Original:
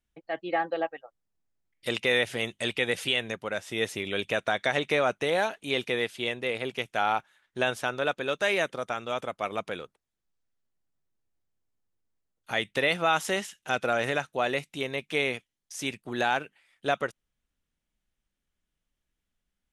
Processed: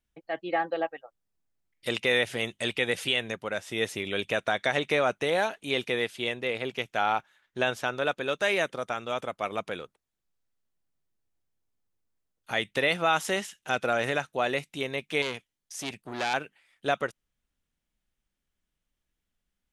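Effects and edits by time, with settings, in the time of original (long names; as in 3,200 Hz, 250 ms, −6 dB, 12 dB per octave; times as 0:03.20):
0:06.41–0:07.94: parametric band 9,600 Hz −6.5 dB 0.36 octaves
0:15.22–0:16.34: saturating transformer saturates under 3,100 Hz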